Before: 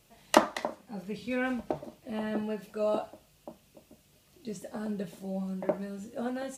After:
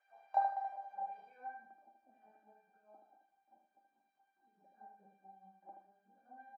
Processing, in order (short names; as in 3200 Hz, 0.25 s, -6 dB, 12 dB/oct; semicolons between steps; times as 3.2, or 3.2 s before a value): compressor 5:1, threshold -33 dBFS, peak gain reduction 17.5 dB; Schroeder reverb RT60 0.3 s, combs from 31 ms, DRR 1 dB; added noise white -51 dBFS; LFO high-pass sine 4.7 Hz 800–2100 Hz; resonator 790 Hz, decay 0.28 s, mix 100%; low-pass sweep 580 Hz -> 270 Hz, 1.18–1.7; on a send: feedback echo 77 ms, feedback 26%, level -5.5 dB; on the sum: gain +18 dB